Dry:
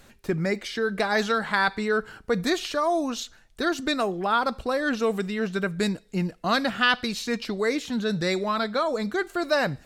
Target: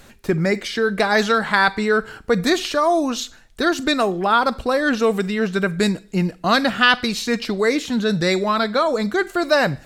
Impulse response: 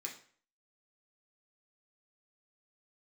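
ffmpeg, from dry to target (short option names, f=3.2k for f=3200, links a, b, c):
-filter_complex "[0:a]asplit=2[a][b];[1:a]atrim=start_sample=2205,highshelf=f=11k:g=11,adelay=44[c];[b][c]afir=irnorm=-1:irlink=0,volume=-19dB[d];[a][d]amix=inputs=2:normalize=0,volume=6.5dB"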